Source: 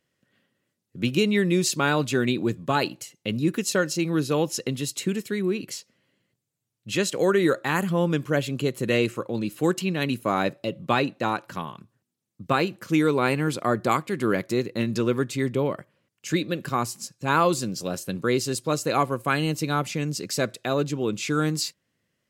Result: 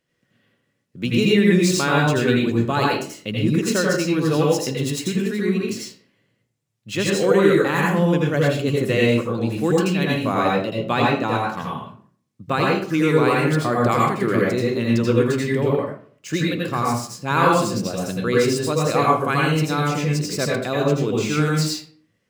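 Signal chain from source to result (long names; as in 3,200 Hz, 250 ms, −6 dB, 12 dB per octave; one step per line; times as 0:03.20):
running median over 3 samples
convolution reverb RT60 0.50 s, pre-delay 78 ms, DRR −3.5 dB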